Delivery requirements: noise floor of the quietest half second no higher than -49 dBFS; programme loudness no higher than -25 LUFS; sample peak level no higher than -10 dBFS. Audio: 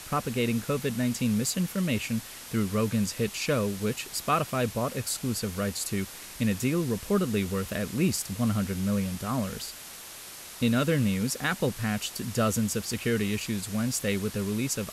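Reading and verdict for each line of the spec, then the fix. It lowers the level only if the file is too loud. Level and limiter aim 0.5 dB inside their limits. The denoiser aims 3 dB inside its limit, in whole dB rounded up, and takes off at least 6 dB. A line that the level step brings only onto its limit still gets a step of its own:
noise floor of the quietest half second -44 dBFS: fail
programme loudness -28.5 LUFS: pass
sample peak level -13.5 dBFS: pass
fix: noise reduction 8 dB, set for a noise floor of -44 dBFS

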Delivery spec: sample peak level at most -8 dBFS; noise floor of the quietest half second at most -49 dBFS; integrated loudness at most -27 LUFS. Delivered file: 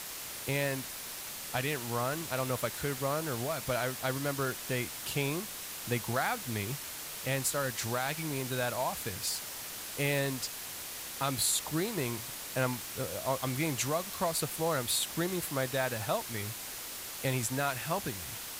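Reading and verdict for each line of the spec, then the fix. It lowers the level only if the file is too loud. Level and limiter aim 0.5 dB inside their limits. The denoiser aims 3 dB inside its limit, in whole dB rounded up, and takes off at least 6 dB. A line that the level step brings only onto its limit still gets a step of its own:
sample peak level -17.0 dBFS: pass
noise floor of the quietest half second -42 dBFS: fail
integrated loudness -33.0 LUFS: pass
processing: noise reduction 10 dB, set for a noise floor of -42 dBFS

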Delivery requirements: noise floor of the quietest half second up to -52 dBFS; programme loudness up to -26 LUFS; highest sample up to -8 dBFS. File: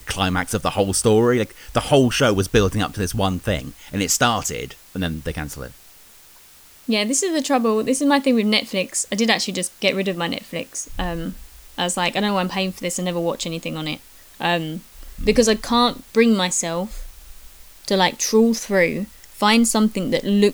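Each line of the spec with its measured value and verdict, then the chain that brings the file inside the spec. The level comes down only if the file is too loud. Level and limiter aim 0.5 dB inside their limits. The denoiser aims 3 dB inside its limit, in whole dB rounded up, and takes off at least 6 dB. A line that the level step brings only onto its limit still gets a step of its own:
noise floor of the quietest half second -48 dBFS: fail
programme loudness -20.0 LUFS: fail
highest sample -3.5 dBFS: fail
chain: trim -6.5 dB

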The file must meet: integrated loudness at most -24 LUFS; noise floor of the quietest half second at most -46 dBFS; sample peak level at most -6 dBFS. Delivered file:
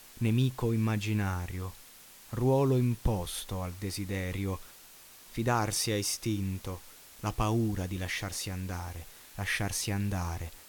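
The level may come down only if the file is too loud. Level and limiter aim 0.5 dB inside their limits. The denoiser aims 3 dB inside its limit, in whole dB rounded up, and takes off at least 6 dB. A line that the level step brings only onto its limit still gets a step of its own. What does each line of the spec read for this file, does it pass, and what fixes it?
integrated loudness -32.0 LUFS: pass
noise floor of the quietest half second -53 dBFS: pass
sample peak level -15.5 dBFS: pass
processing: none needed

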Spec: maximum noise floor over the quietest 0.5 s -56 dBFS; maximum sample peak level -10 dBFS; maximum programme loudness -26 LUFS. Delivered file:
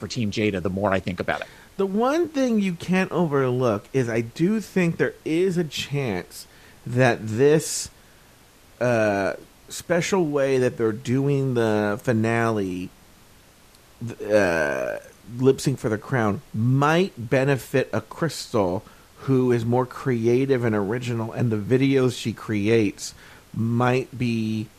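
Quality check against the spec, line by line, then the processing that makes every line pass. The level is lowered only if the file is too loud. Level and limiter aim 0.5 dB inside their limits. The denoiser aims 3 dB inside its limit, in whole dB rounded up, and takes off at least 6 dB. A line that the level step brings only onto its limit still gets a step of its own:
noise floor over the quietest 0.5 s -52 dBFS: fail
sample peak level -5.5 dBFS: fail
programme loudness -23.0 LUFS: fail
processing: noise reduction 6 dB, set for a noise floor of -52 dBFS; trim -3.5 dB; peak limiter -10.5 dBFS

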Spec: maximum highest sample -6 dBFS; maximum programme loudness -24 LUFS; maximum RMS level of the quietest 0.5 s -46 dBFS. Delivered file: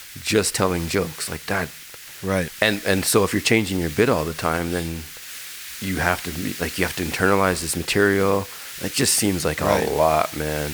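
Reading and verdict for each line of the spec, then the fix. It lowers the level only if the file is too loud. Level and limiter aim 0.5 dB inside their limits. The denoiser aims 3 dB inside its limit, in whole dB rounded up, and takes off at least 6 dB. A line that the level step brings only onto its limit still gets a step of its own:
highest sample -2.0 dBFS: fail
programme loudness -21.5 LUFS: fail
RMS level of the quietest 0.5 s -40 dBFS: fail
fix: noise reduction 6 dB, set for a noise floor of -40 dBFS; trim -3 dB; peak limiter -6.5 dBFS

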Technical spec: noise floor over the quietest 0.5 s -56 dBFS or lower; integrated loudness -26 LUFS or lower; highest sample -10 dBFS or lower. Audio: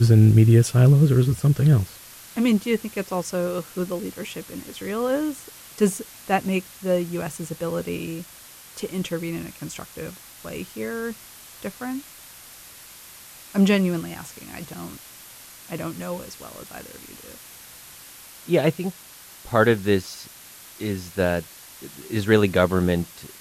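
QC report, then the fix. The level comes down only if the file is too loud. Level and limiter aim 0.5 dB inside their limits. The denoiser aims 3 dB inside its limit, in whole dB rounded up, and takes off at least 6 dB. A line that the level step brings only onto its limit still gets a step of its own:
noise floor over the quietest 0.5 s -45 dBFS: fail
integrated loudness -22.5 LUFS: fail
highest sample -5.0 dBFS: fail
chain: noise reduction 10 dB, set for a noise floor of -45 dBFS; trim -4 dB; peak limiter -10.5 dBFS

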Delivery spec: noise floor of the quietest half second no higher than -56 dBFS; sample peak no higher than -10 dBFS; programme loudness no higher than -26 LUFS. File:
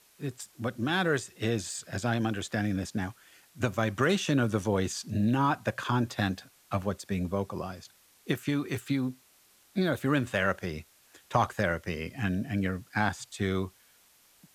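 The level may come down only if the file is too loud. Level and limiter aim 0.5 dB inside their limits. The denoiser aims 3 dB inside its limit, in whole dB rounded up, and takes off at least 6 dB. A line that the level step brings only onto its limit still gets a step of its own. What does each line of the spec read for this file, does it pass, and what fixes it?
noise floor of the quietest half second -62 dBFS: pass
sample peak -12.5 dBFS: pass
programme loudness -30.5 LUFS: pass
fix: none needed

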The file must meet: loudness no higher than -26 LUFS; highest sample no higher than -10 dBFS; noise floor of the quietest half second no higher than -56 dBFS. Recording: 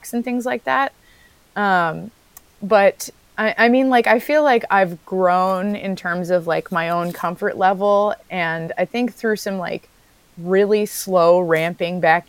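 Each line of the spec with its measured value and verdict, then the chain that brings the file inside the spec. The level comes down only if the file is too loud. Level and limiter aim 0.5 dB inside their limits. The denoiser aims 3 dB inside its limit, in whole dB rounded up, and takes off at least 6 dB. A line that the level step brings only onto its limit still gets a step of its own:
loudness -18.5 LUFS: fail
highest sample -2.0 dBFS: fail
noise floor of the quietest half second -54 dBFS: fail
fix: trim -8 dB; peak limiter -10.5 dBFS

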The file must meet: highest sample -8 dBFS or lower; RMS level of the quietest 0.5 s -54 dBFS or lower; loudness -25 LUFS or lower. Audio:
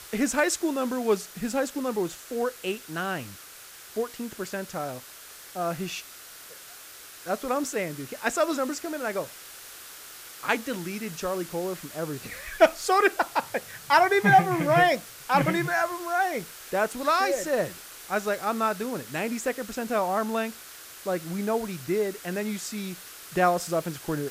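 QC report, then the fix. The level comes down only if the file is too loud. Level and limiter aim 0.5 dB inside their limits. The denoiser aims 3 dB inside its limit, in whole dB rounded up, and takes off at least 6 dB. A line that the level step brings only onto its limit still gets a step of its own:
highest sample -7.0 dBFS: fail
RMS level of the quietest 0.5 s -46 dBFS: fail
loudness -27.0 LUFS: pass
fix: noise reduction 11 dB, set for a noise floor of -46 dBFS; peak limiter -8.5 dBFS

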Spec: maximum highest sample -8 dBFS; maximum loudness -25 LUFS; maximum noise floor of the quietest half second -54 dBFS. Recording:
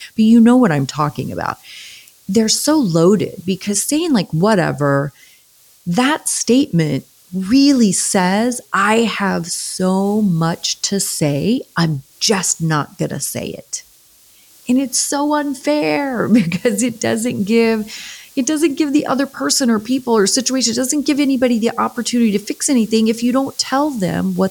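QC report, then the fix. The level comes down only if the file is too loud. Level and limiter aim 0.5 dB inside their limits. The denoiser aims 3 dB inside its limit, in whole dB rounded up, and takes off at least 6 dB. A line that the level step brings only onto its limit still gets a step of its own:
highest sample -3.0 dBFS: fail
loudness -16.0 LUFS: fail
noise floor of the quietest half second -50 dBFS: fail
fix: trim -9.5 dB

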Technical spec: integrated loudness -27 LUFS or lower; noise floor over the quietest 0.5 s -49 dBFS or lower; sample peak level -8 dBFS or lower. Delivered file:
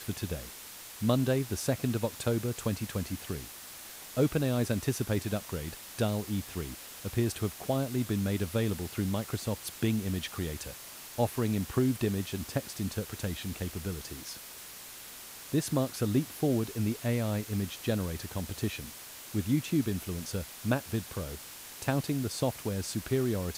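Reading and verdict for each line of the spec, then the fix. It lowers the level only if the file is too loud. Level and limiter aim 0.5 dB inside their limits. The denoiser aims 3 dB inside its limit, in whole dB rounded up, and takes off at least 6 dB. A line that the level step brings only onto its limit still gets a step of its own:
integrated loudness -32.5 LUFS: pass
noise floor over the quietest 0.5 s -47 dBFS: fail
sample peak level -13.5 dBFS: pass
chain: noise reduction 6 dB, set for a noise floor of -47 dBFS

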